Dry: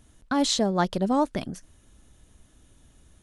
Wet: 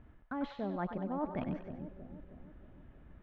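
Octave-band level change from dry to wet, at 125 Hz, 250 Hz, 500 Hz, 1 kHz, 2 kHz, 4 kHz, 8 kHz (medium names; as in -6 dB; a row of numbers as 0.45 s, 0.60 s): -9.5 dB, -11.5 dB, -12.5 dB, -13.0 dB, -13.0 dB, under -25 dB, under -40 dB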